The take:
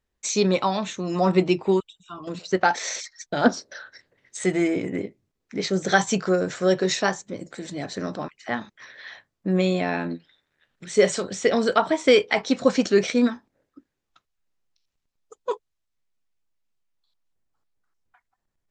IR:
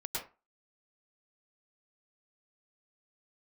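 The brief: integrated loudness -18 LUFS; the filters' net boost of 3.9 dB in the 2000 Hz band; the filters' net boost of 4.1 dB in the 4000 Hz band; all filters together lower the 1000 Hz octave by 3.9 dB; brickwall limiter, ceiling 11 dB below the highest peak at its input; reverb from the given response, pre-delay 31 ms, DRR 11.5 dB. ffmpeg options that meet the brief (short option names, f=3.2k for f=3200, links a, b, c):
-filter_complex "[0:a]equalizer=f=1k:t=o:g=-7.5,equalizer=f=2k:t=o:g=6.5,equalizer=f=4k:t=o:g=3.5,alimiter=limit=-13.5dB:level=0:latency=1,asplit=2[a][b];[1:a]atrim=start_sample=2205,adelay=31[c];[b][c]afir=irnorm=-1:irlink=0,volume=-14.5dB[d];[a][d]amix=inputs=2:normalize=0,volume=8.5dB"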